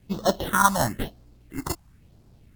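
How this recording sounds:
aliases and images of a low sample rate 2,400 Hz, jitter 0%
phaser sweep stages 4, 1 Hz, lowest notch 380–2,300 Hz
a quantiser's noise floor 12 bits, dither none
Ogg Vorbis

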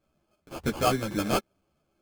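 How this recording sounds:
aliases and images of a low sample rate 1,900 Hz, jitter 0%
a shimmering, thickened sound

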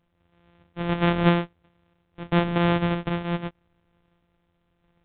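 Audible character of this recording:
a buzz of ramps at a fixed pitch in blocks of 256 samples
sample-and-hold tremolo 3.1 Hz
mu-law

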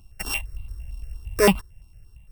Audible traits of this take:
a buzz of ramps at a fixed pitch in blocks of 16 samples
notches that jump at a steady rate 8.8 Hz 480–1,700 Hz

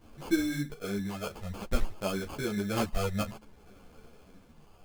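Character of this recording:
phaser sweep stages 6, 0.56 Hz, lowest notch 300–3,800 Hz
aliases and images of a low sample rate 1,900 Hz, jitter 0%
a shimmering, thickened sound

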